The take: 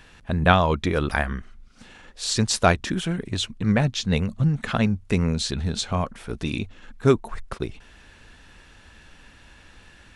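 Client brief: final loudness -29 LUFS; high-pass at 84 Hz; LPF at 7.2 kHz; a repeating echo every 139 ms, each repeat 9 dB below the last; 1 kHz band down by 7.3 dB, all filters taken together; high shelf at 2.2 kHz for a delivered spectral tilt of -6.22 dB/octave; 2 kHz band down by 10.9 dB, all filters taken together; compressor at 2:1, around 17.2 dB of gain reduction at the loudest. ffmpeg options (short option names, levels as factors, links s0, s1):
-af "highpass=84,lowpass=7200,equalizer=f=1000:t=o:g=-7,equalizer=f=2000:t=o:g=-9,highshelf=f=2200:g=-6,acompressor=threshold=0.00501:ratio=2,aecho=1:1:139|278|417|556:0.355|0.124|0.0435|0.0152,volume=3.55"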